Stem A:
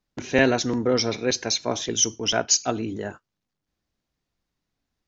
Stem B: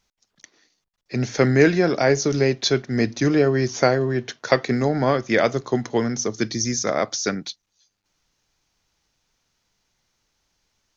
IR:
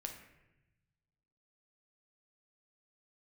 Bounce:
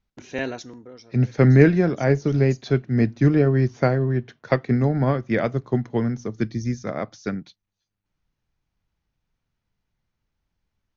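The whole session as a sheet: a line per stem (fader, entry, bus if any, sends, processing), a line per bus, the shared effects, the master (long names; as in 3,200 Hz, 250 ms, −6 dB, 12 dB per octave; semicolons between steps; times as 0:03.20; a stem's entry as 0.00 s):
−9.0 dB, 0.00 s, no send, automatic ducking −19 dB, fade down 0.65 s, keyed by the second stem
−1.5 dB, 0.00 s, no send, bass and treble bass +11 dB, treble −14 dB; expander for the loud parts 1.5 to 1, over −25 dBFS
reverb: not used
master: no processing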